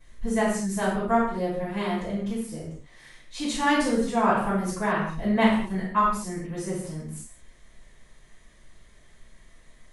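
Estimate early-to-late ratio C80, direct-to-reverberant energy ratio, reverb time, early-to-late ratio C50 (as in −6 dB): 5.5 dB, −16.5 dB, non-exponential decay, 1.5 dB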